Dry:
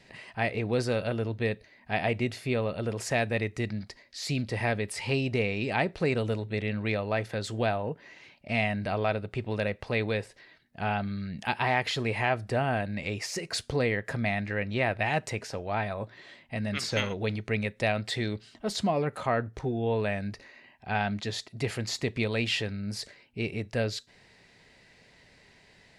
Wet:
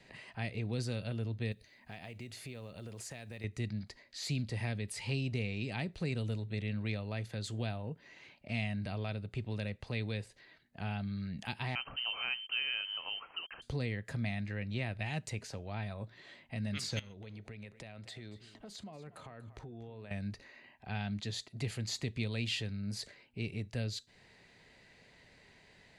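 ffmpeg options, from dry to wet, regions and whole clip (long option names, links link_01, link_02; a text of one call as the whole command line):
ffmpeg -i in.wav -filter_complex "[0:a]asettb=1/sr,asplit=3[link_01][link_02][link_03];[link_01]atrim=end=1.524[link_04];[link_02]atrim=start=1.52:end=3.44,asetpts=PTS-STARTPTS,afade=type=in:duration=0.004:curve=qsin,afade=type=out:start_time=1.916:duration=0.004:curve=qsin,highshelf=frequency=4600:gain=9.5,acompressor=threshold=-41dB:ratio=3:attack=3.2:release=140:knee=1:detection=peak,acrusher=bits=8:mode=log:mix=0:aa=0.000001[link_05];[link_03]atrim=start=3.436[link_06];[link_04][link_05]acrossfade=duration=0.004:curve1=hsin:curve2=qsin[link_07];[link_07][link_06]acrossfade=duration=0.004:curve1=qsin:curve2=hsin,asettb=1/sr,asplit=3[link_08][link_09][link_10];[link_08]atrim=end=11.754[link_11];[link_09]atrim=start=11.75:end=13.62,asetpts=PTS-STARTPTS,afade=type=in:duration=0.004:curve=qsin,afade=type=out:start_time=1.866:duration=0.004:curve=qsin,acrusher=bits=6:mix=0:aa=0.5,lowpass=frequency=2700:width_type=q:width=0.5098,lowpass=frequency=2700:width_type=q:width=0.6013,lowpass=frequency=2700:width_type=q:width=0.9,lowpass=frequency=2700:width_type=q:width=2.563,afreqshift=-3200[link_12];[link_10]atrim=start=13.616[link_13];[link_11][link_12]acrossfade=duration=0.004:curve1=hsin:curve2=qsin[link_14];[link_14][link_13]acrossfade=duration=0.004:curve1=qsin:curve2=hsin,asettb=1/sr,asplit=3[link_15][link_16][link_17];[link_15]atrim=end=16.994[link_18];[link_16]atrim=start=16.99:end=20.11,asetpts=PTS-STARTPTS,afade=type=in:duration=0.004:curve=qsin,afade=type=out:start_time=3.116:duration=0.004:curve=qsin,acompressor=threshold=-41dB:ratio=6:attack=3.2:release=140:knee=1:detection=peak,aecho=1:1:237:0.15,atrim=end_sample=137592[link_19];[link_17]atrim=start=20.106[link_20];[link_18][link_19]acrossfade=duration=0.004:curve1=hsin:curve2=qsin[link_21];[link_21][link_20]acrossfade=duration=0.004:curve1=qsin:curve2=hsin,highshelf=frequency=9100:gain=-4,bandreject=frequency=5400:width=11,acrossover=split=230|3000[link_22][link_23][link_24];[link_23]acompressor=threshold=-50dB:ratio=2[link_25];[link_22][link_25][link_24]amix=inputs=3:normalize=0,volume=-3dB" out.wav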